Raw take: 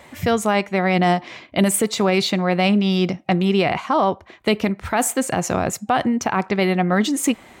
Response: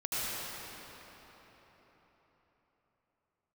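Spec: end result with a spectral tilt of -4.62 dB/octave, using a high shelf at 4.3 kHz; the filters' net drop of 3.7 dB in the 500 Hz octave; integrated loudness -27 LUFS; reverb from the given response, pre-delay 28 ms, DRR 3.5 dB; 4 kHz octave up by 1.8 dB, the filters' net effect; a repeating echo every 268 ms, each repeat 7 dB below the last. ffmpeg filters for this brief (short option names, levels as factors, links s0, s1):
-filter_complex "[0:a]equalizer=f=500:t=o:g=-5,equalizer=f=4000:t=o:g=4,highshelf=f=4300:g=-3,aecho=1:1:268|536|804|1072|1340:0.447|0.201|0.0905|0.0407|0.0183,asplit=2[s0][s1];[1:a]atrim=start_sample=2205,adelay=28[s2];[s1][s2]afir=irnorm=-1:irlink=0,volume=0.266[s3];[s0][s3]amix=inputs=2:normalize=0,volume=0.376"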